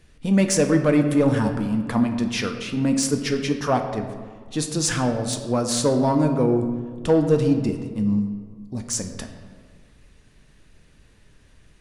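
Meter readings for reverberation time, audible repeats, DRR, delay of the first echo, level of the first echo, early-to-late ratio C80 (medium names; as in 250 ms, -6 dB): 1.7 s, no echo, 5.0 dB, no echo, no echo, 9.0 dB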